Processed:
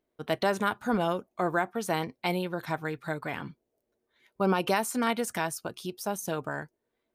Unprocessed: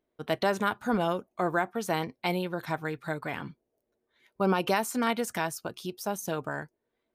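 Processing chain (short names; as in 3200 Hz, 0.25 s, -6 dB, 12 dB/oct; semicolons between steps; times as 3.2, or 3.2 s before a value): dynamic EQ 9400 Hz, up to +4 dB, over -59 dBFS, Q 4.2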